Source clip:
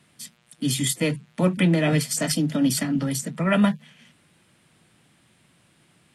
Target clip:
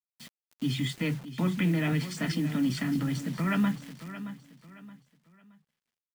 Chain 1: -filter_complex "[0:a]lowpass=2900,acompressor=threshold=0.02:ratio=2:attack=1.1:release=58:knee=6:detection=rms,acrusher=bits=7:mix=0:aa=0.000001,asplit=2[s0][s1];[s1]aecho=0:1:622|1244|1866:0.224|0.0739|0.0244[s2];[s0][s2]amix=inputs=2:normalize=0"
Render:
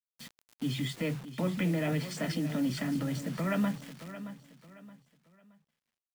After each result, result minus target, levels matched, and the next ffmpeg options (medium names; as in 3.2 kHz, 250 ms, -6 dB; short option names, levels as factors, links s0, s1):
500 Hz band +5.5 dB; compression: peak gain reduction +4.5 dB
-filter_complex "[0:a]lowpass=2900,equalizer=f=570:w=2.1:g=-11.5,acompressor=threshold=0.02:ratio=2:attack=1.1:release=58:knee=6:detection=rms,acrusher=bits=7:mix=0:aa=0.000001,asplit=2[s0][s1];[s1]aecho=0:1:622|1244|1866:0.224|0.0739|0.0244[s2];[s0][s2]amix=inputs=2:normalize=0"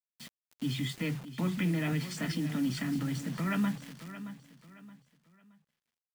compression: peak gain reduction +3.5 dB
-filter_complex "[0:a]lowpass=2900,equalizer=f=570:w=2.1:g=-11.5,acompressor=threshold=0.0473:ratio=2:attack=1.1:release=58:knee=6:detection=rms,acrusher=bits=7:mix=0:aa=0.000001,asplit=2[s0][s1];[s1]aecho=0:1:622|1244|1866:0.224|0.0739|0.0244[s2];[s0][s2]amix=inputs=2:normalize=0"